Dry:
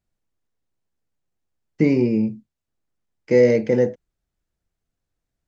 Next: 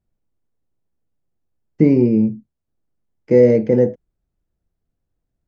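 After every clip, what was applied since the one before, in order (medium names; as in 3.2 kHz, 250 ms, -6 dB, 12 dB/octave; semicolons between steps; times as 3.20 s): tilt shelf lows +7 dB, about 1.1 kHz; trim -1.5 dB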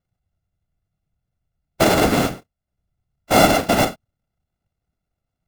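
sorted samples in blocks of 64 samples; whisper effect; trim -3 dB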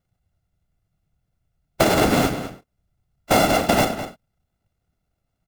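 compression 6:1, threshold -18 dBFS, peak gain reduction 10 dB; echo from a far wall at 35 m, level -11 dB; trim +4 dB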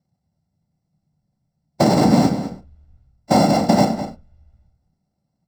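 reverberation RT60 0.20 s, pre-delay 3 ms, DRR 6.5 dB; trim -6 dB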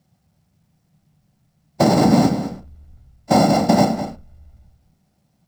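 companding laws mixed up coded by mu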